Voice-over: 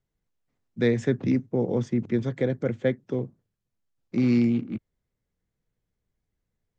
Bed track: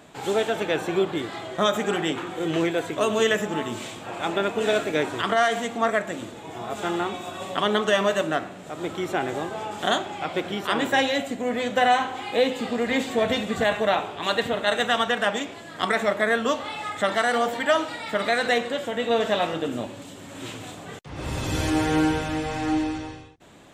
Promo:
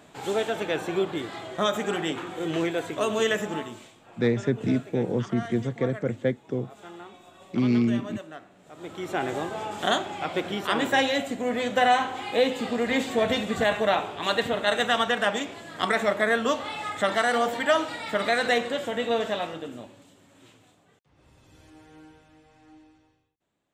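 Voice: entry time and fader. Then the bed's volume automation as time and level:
3.40 s, -1.0 dB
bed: 3.55 s -3 dB
3.93 s -17 dB
8.48 s -17 dB
9.24 s -1 dB
18.96 s -1 dB
21.36 s -29 dB

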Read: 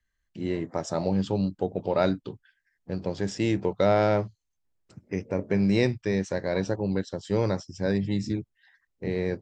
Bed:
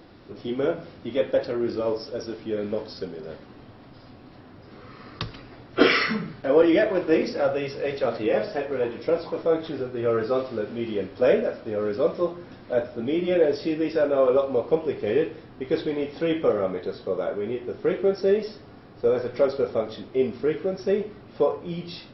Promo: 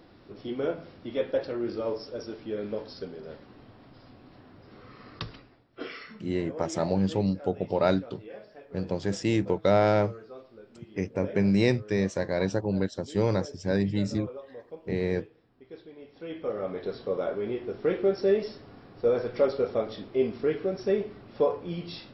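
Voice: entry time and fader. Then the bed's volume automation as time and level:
5.85 s, 0.0 dB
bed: 5.33 s -5 dB
5.67 s -21 dB
15.95 s -21 dB
16.87 s -2.5 dB

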